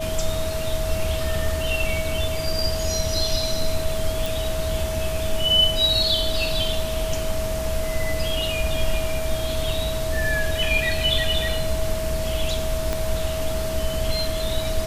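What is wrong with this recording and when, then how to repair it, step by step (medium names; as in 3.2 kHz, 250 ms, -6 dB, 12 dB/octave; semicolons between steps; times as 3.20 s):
whine 640 Hz -27 dBFS
4.26 s: pop
12.93 s: pop -10 dBFS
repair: de-click; band-stop 640 Hz, Q 30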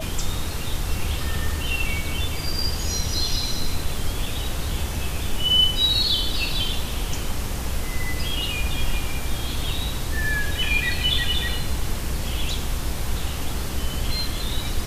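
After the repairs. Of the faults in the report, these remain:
12.93 s: pop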